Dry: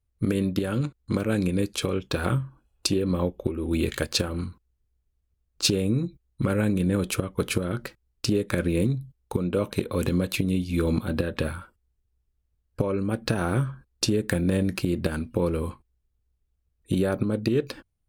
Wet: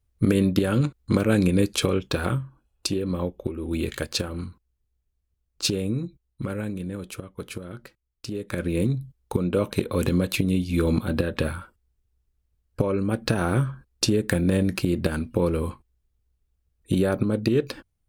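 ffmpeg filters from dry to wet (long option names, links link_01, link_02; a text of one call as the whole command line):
ffmpeg -i in.wav -af "volume=16dB,afade=type=out:start_time=1.82:duration=0.59:silence=0.473151,afade=type=out:start_time=5.82:duration=1.15:silence=0.421697,afade=type=in:start_time=8.29:duration=0.73:silence=0.266073" out.wav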